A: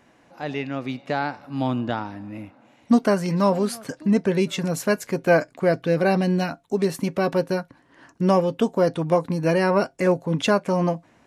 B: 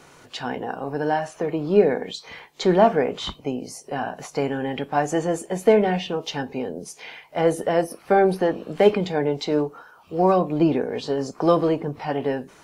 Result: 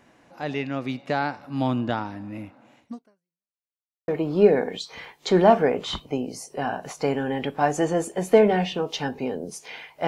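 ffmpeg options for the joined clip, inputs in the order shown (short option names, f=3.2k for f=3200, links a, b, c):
-filter_complex "[0:a]apad=whole_dur=10.07,atrim=end=10.07,asplit=2[a][b];[a]atrim=end=3.53,asetpts=PTS-STARTPTS,afade=t=out:st=2.78:d=0.75:c=exp[c];[b]atrim=start=3.53:end=4.08,asetpts=PTS-STARTPTS,volume=0[d];[1:a]atrim=start=1.42:end=7.41,asetpts=PTS-STARTPTS,afade=t=in:d=0.004:c=hsin[e];[c][d][e]concat=n=3:v=0:a=1"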